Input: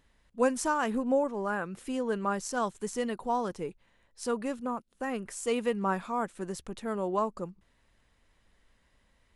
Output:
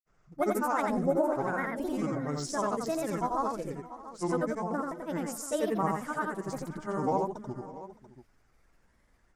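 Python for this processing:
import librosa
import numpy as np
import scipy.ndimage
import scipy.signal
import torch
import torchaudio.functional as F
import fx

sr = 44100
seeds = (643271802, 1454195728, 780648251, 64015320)

y = fx.granulator(x, sr, seeds[0], grain_ms=100.0, per_s=20.0, spray_ms=100.0, spread_st=7)
y = fx.band_shelf(y, sr, hz=3200.0, db=-8.0, octaves=1.0)
y = fx.echo_multitap(y, sr, ms=(87, 542, 615, 687), db=(-3.0, -19.5, -20.0, -15.0))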